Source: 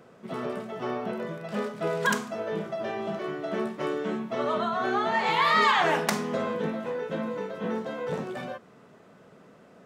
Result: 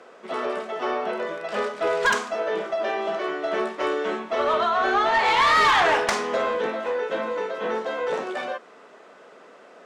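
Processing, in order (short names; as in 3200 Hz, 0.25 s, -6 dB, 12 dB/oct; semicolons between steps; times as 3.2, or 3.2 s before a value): Chebyshev band-pass 340–8800 Hz, order 2; overdrive pedal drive 17 dB, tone 4500 Hz, clips at -9 dBFS; gain -1 dB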